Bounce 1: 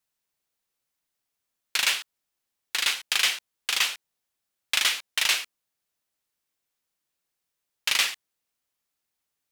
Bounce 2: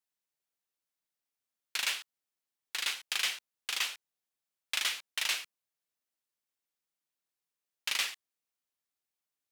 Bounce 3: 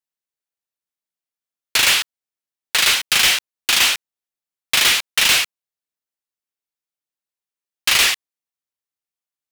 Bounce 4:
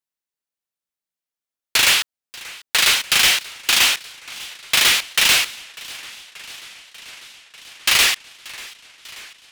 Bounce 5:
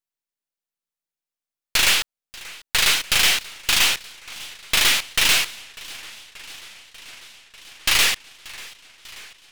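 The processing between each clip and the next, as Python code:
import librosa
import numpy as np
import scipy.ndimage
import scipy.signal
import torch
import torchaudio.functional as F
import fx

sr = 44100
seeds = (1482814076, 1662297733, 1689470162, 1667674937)

y1 = fx.low_shelf(x, sr, hz=78.0, db=-11.0)
y1 = y1 * 10.0 ** (-8.5 / 20.0)
y2 = fx.leveller(y1, sr, passes=5)
y2 = y2 * 10.0 ** (7.0 / 20.0)
y3 = fx.echo_warbled(y2, sr, ms=589, feedback_pct=75, rate_hz=2.8, cents=216, wet_db=-20.5)
y4 = np.where(y3 < 0.0, 10.0 ** (-7.0 / 20.0) * y3, y3)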